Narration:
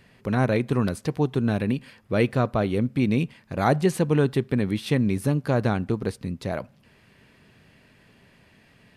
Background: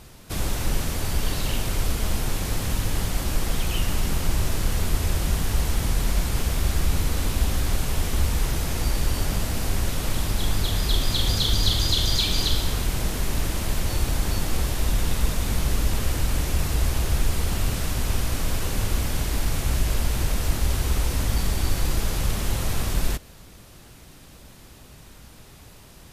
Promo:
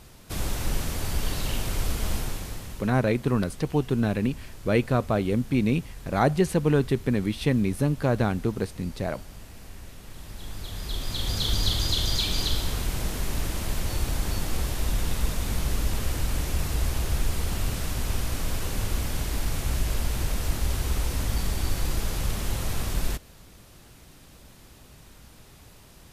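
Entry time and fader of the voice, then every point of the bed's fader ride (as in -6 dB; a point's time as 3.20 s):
2.55 s, -1.0 dB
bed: 2.16 s -3 dB
3.02 s -19 dB
10.05 s -19 dB
11.50 s -3.5 dB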